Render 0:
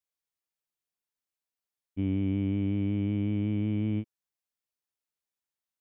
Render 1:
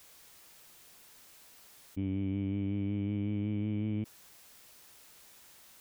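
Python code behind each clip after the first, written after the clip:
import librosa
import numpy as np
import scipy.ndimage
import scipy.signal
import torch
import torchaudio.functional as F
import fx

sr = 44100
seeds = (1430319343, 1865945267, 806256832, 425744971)

y = fx.env_flatten(x, sr, amount_pct=100)
y = F.gain(torch.from_numpy(y), -5.5).numpy()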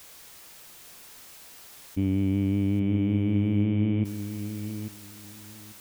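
y = fx.echo_feedback(x, sr, ms=841, feedback_pct=19, wet_db=-9.5)
y = F.gain(torch.from_numpy(y), 8.5).numpy()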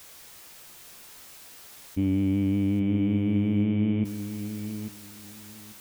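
y = fx.doubler(x, sr, ms=14.0, db=-10.5)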